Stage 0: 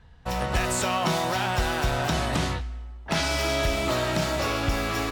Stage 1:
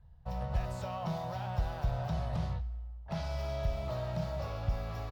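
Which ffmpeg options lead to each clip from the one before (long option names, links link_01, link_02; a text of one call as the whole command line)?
ffmpeg -i in.wav -af "firequalizer=gain_entry='entry(150,0);entry(290,-21);entry(580,-5);entry(1500,-16);entry(2400,-18);entry(4800,-15);entry(8000,-26);entry(15000,-15)':delay=0.05:min_phase=1,volume=-4.5dB" out.wav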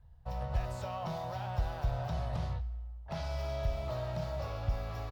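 ffmpeg -i in.wav -af "equalizer=frequency=180:width_type=o:width=0.46:gain=-6.5" out.wav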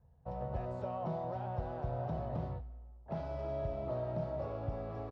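ffmpeg -i in.wav -af "bandpass=frequency=330:width_type=q:width=1.2:csg=0,volume=7dB" out.wav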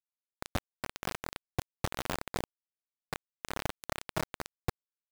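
ffmpeg -i in.wav -af "acrusher=bits=4:mix=0:aa=0.000001,volume=3.5dB" out.wav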